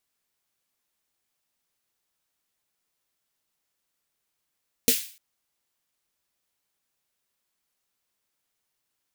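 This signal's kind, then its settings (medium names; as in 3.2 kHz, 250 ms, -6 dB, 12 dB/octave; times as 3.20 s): snare drum length 0.30 s, tones 250 Hz, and 460 Hz, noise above 2.2 kHz, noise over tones 2 dB, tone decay 0.11 s, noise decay 0.43 s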